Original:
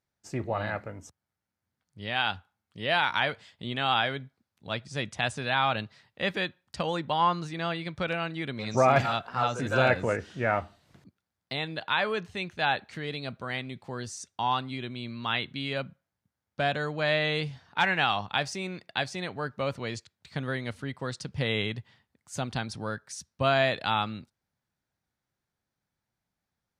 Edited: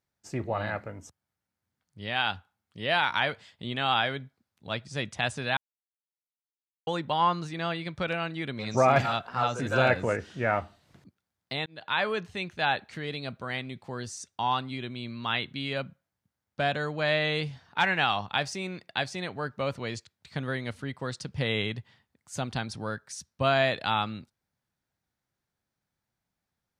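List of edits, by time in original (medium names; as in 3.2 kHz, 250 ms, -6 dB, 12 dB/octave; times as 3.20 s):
5.57–6.87 s: mute
11.66–11.99 s: fade in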